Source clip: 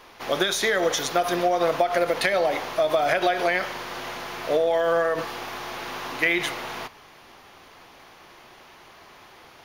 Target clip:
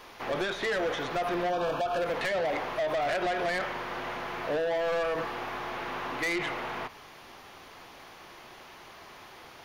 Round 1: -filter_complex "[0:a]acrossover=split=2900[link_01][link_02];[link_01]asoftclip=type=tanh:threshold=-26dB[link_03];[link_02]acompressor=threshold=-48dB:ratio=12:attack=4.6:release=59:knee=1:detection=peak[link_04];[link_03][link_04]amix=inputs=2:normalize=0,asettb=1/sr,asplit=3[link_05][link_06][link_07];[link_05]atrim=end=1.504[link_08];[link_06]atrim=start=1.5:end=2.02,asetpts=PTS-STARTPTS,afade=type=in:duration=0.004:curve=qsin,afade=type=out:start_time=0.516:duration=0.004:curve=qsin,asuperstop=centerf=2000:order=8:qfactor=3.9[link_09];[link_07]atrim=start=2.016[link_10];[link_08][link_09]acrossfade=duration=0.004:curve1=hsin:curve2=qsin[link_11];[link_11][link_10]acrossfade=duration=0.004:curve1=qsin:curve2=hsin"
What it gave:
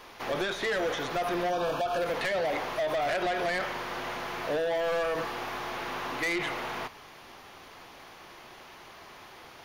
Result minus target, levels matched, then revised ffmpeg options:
downward compressor: peak gain reduction −7 dB
-filter_complex "[0:a]acrossover=split=2900[link_01][link_02];[link_01]asoftclip=type=tanh:threshold=-26dB[link_03];[link_02]acompressor=threshold=-55.5dB:ratio=12:attack=4.6:release=59:knee=1:detection=peak[link_04];[link_03][link_04]amix=inputs=2:normalize=0,asettb=1/sr,asplit=3[link_05][link_06][link_07];[link_05]atrim=end=1.504[link_08];[link_06]atrim=start=1.5:end=2.02,asetpts=PTS-STARTPTS,afade=type=in:duration=0.004:curve=qsin,afade=type=out:start_time=0.516:duration=0.004:curve=qsin,asuperstop=centerf=2000:order=8:qfactor=3.9[link_09];[link_07]atrim=start=2.016[link_10];[link_08][link_09]acrossfade=duration=0.004:curve1=hsin:curve2=qsin[link_11];[link_11][link_10]acrossfade=duration=0.004:curve1=qsin:curve2=hsin"

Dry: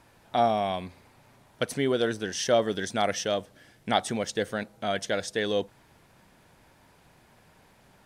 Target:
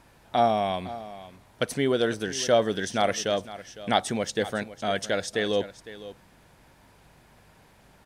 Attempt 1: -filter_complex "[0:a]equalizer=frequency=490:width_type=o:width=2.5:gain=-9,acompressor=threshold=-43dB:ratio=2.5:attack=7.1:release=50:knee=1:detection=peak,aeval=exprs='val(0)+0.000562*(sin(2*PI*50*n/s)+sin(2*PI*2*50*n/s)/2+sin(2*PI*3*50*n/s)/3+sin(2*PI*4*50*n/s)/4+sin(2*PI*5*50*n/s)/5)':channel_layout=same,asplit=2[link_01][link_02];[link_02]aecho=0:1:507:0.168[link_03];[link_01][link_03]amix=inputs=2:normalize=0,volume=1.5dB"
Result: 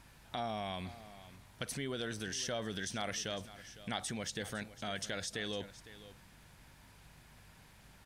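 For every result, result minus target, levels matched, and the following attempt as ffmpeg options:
downward compressor: peak gain reduction +12.5 dB; 500 Hz band −4.0 dB
-filter_complex "[0:a]equalizer=frequency=490:width_type=o:width=2.5:gain=-9,aeval=exprs='val(0)+0.000562*(sin(2*PI*50*n/s)+sin(2*PI*2*50*n/s)/2+sin(2*PI*3*50*n/s)/3+sin(2*PI*4*50*n/s)/4+sin(2*PI*5*50*n/s)/5)':channel_layout=same,asplit=2[link_01][link_02];[link_02]aecho=0:1:507:0.168[link_03];[link_01][link_03]amix=inputs=2:normalize=0,volume=1.5dB"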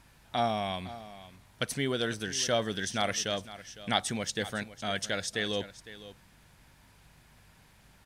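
500 Hz band −3.5 dB
-filter_complex "[0:a]aeval=exprs='val(0)+0.000562*(sin(2*PI*50*n/s)+sin(2*PI*2*50*n/s)/2+sin(2*PI*3*50*n/s)/3+sin(2*PI*4*50*n/s)/4+sin(2*PI*5*50*n/s)/5)':channel_layout=same,asplit=2[link_01][link_02];[link_02]aecho=0:1:507:0.168[link_03];[link_01][link_03]amix=inputs=2:normalize=0,volume=1.5dB"

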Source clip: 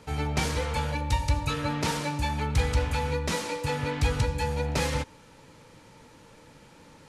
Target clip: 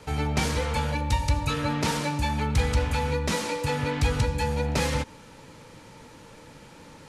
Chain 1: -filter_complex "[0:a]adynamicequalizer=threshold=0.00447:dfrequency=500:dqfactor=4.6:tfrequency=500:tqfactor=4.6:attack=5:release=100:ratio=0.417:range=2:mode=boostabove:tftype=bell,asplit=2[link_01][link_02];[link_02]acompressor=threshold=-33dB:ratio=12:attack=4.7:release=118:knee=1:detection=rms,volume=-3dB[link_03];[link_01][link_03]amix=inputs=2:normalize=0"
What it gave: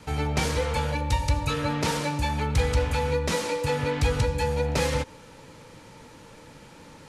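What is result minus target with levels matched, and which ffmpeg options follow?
500 Hz band +2.5 dB
-filter_complex "[0:a]adynamicequalizer=threshold=0.00447:dfrequency=220:dqfactor=4.6:tfrequency=220:tqfactor=4.6:attack=5:release=100:ratio=0.417:range=2:mode=boostabove:tftype=bell,asplit=2[link_01][link_02];[link_02]acompressor=threshold=-33dB:ratio=12:attack=4.7:release=118:knee=1:detection=rms,volume=-3dB[link_03];[link_01][link_03]amix=inputs=2:normalize=0"

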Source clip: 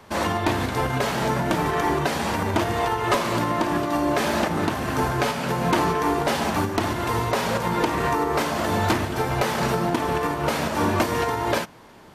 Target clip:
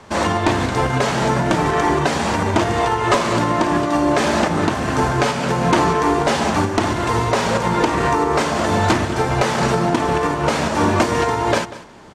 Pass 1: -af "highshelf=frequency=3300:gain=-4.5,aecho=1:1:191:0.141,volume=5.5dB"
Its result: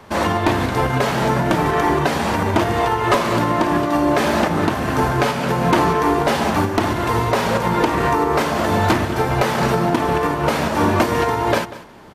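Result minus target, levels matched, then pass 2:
8,000 Hz band −3.5 dB
-af "lowpass=frequency=7700:width_type=q:width=1.7,highshelf=frequency=3300:gain=-4.5,aecho=1:1:191:0.141,volume=5.5dB"

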